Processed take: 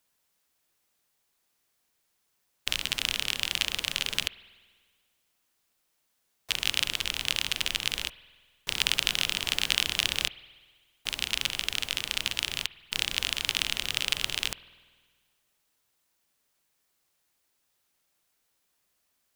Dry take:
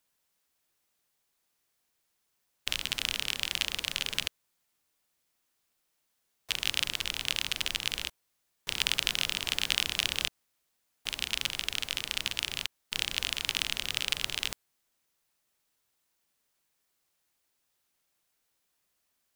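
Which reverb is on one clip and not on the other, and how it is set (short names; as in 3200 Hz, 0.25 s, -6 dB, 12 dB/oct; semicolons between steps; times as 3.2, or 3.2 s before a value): spring tank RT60 1.6 s, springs 49 ms, chirp 25 ms, DRR 17.5 dB; gain +2.5 dB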